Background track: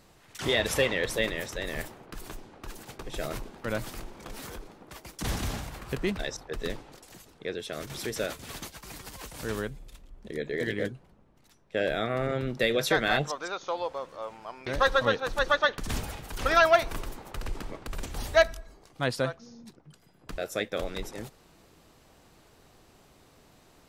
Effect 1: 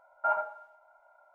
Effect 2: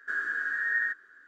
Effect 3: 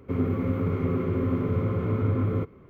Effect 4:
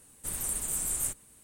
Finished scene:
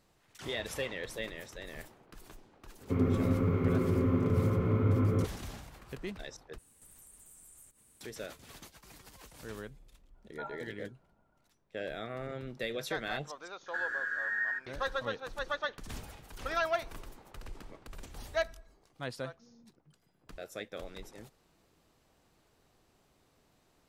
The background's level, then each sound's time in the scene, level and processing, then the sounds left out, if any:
background track -11 dB
2.81 add 3 -2.5 dB
6.58 replace with 4 -6.5 dB + compressor 5:1, threshold -49 dBFS
10.14 add 1 -15.5 dB + vibrato 8.6 Hz 54 cents
13.66 add 2 -4.5 dB + three-band squash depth 40%

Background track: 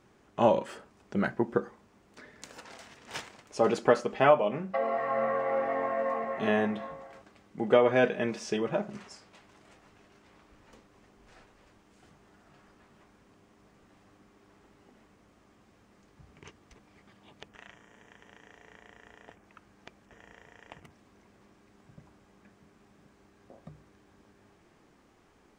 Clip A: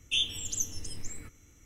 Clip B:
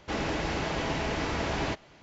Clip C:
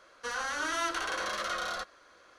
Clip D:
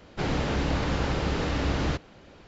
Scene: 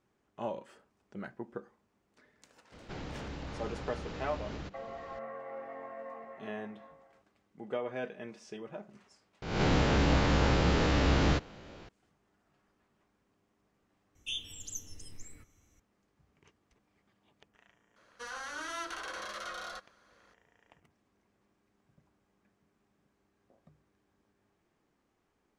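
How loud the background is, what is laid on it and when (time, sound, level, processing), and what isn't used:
background track -14 dB
2.72 add D -2.5 dB + compressor 2.5:1, threshold -42 dBFS
9.42 add D -1.5 dB + spectral swells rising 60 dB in 0.76 s
14.15 add A -9.5 dB
17.96 add C -7.5 dB
not used: B

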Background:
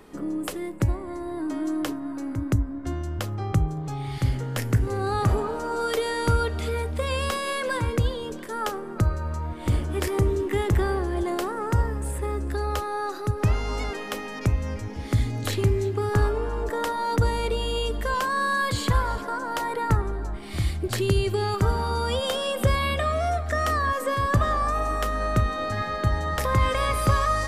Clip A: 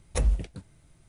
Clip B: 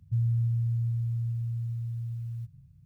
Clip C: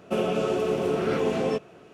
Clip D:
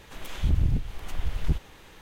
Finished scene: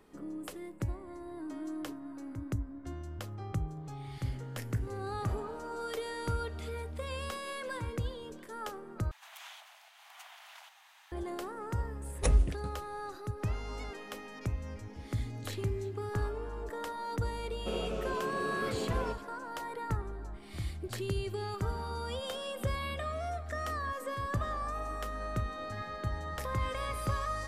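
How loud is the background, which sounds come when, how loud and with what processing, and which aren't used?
background -12 dB
9.11 replace with D -6.5 dB + steep high-pass 670 Hz 72 dB/oct
12.08 add A -1 dB
17.55 add C -11.5 dB
not used: B

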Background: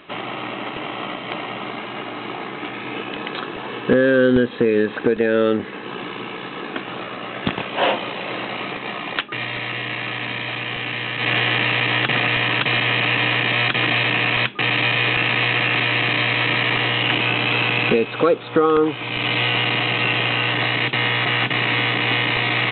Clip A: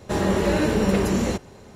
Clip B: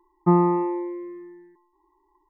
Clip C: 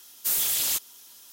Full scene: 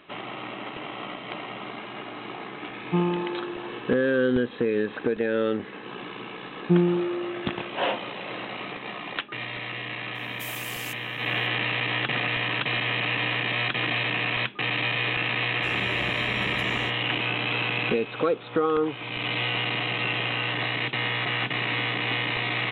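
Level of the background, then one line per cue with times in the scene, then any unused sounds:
background -7.5 dB
2.66 add B -10 dB + tilt -2 dB/oct
6.43 add B -0.5 dB + running mean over 44 samples
10.15 add C -14.5 dB + soft clip -17 dBFS
15.53 add A -16.5 dB

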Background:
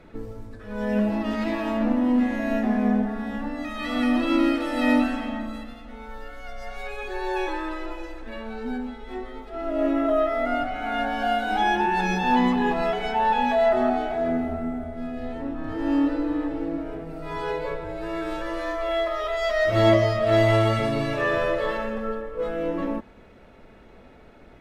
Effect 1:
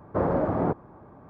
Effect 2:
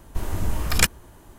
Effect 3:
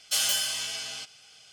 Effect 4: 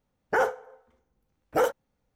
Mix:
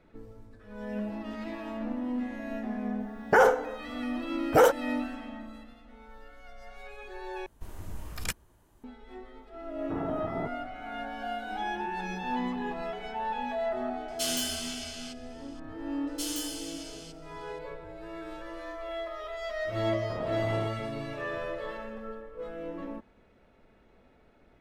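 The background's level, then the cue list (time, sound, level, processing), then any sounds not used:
background -11.5 dB
3 add 4 -10.5 dB + maximiser +23.5 dB
7.46 replace with 2 -15 dB
9.75 add 1 -10 dB + notch comb 530 Hz
14.08 add 3 -6 dB
16.07 add 3 -18 dB + high shelf 2600 Hz +9.5 dB
19.95 add 1 -9.5 dB + limiter -21 dBFS

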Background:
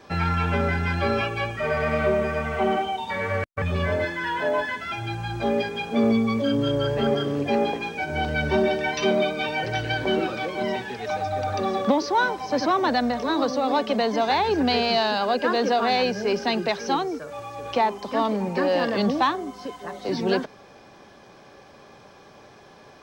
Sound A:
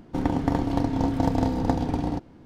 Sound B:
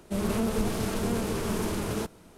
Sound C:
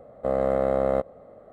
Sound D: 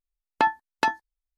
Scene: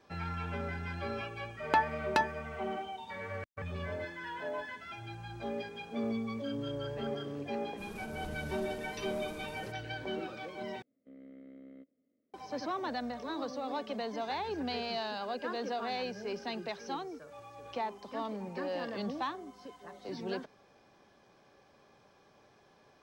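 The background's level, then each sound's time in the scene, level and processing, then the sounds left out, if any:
background -14.5 dB
1.33 add D -5.5 dB
7.66 add B -18 dB
10.82 replace with C -13.5 dB + vowel filter i
not used: A

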